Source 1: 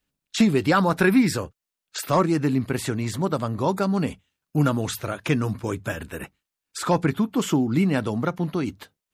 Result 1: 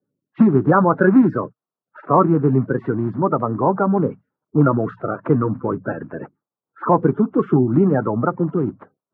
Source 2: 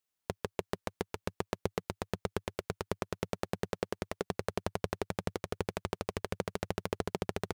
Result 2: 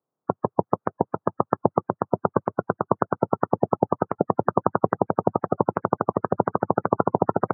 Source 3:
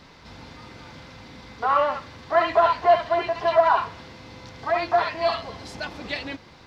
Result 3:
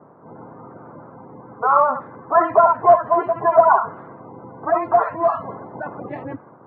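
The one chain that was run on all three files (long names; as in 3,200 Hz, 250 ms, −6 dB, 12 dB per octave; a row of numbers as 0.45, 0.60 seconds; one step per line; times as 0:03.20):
spectral magnitudes quantised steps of 30 dB
low-pass that shuts in the quiet parts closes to 800 Hz, open at −21.5 dBFS
Chebyshev band-pass filter 120–1,300 Hz, order 3
normalise the peak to −1.5 dBFS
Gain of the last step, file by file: +7.0, +15.5, +6.5 decibels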